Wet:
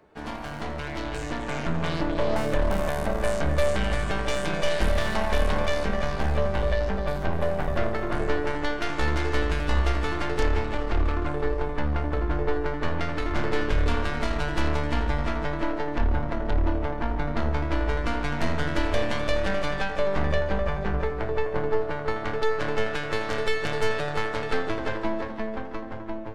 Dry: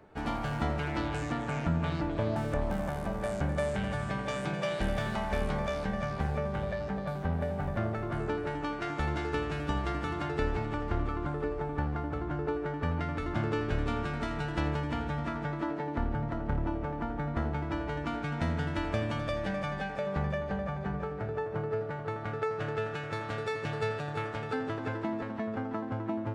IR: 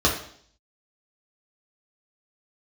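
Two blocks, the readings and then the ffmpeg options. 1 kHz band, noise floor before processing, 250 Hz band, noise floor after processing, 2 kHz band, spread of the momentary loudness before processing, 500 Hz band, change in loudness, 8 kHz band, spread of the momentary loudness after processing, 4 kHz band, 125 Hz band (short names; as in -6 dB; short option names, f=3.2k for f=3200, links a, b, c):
+5.0 dB, -38 dBFS, +3.0 dB, -33 dBFS, +7.5 dB, 3 LU, +7.0 dB, +5.5 dB, +10.0 dB, 4 LU, +9.5 dB, +3.0 dB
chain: -filter_complex "[0:a]lowshelf=f=430:g=-6.5,aeval=exprs='0.119*(cos(1*acos(clip(val(0)/0.119,-1,1)))-cos(1*PI/2))+0.0376*(cos(5*acos(clip(val(0)/0.119,-1,1)))-cos(5*PI/2))+0.0422*(cos(6*acos(clip(val(0)/0.119,-1,1)))-cos(6*PI/2))':c=same,asubboost=boost=4:cutoff=57,dynaudnorm=f=360:g=9:m=9.5dB,asplit=2[a][b];[1:a]atrim=start_sample=2205,lowshelf=f=110:g=8.5[c];[b][c]afir=irnorm=-1:irlink=0,volume=-27.5dB[d];[a][d]amix=inputs=2:normalize=0,volume=-7.5dB"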